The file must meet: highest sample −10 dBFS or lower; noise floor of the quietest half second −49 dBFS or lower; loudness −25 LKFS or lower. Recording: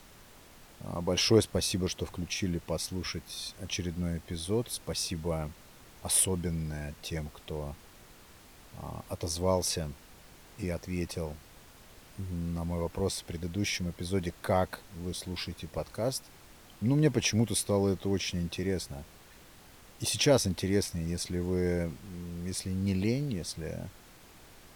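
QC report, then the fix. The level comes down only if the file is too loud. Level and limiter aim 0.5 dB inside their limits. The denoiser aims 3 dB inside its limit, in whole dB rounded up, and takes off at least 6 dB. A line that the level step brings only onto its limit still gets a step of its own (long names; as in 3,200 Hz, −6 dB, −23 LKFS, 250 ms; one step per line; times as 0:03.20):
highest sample −11.0 dBFS: in spec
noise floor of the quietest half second −54 dBFS: in spec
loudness −32.0 LKFS: in spec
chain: no processing needed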